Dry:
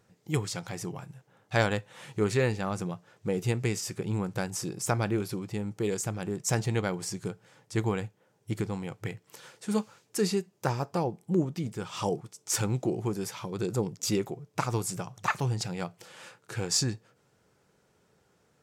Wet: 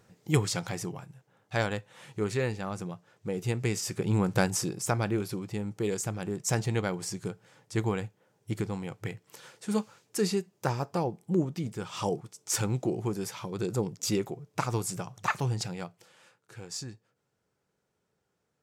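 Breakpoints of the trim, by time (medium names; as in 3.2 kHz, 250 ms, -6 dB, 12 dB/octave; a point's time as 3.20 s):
0.65 s +4 dB
1.10 s -3.5 dB
3.33 s -3.5 dB
4.44 s +7 dB
4.82 s -0.5 dB
15.64 s -0.5 dB
16.22 s -11.5 dB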